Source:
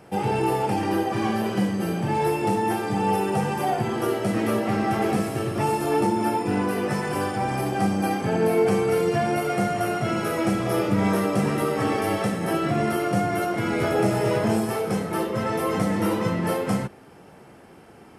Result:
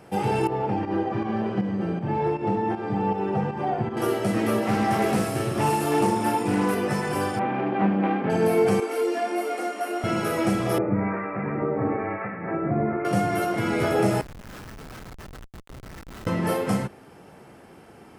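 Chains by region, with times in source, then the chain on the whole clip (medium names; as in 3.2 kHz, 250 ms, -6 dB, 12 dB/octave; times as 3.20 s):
0.47–3.97 s: tape spacing loss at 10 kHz 30 dB + volume shaper 158 bpm, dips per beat 1, -9 dB, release 144 ms
4.62–6.75 s: treble shelf 5.3 kHz +4.5 dB + doubling 47 ms -7 dB + loudspeaker Doppler distortion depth 0.13 ms
7.39–8.30 s: self-modulated delay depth 0.2 ms + low-pass 2.6 kHz 24 dB/octave + resonant low shelf 140 Hz -11 dB, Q 1.5
8.80–10.04 s: steep high-pass 230 Hz 96 dB/octave + detune thickener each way 17 cents
10.78–13.05 s: steep low-pass 2.4 kHz 96 dB/octave + harmonic tremolo 1 Hz, crossover 940 Hz
14.21–16.27 s: elliptic band-pass 1.4–7 kHz, stop band 50 dB + compressor with a negative ratio -40 dBFS + Schmitt trigger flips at -34 dBFS
whole clip: none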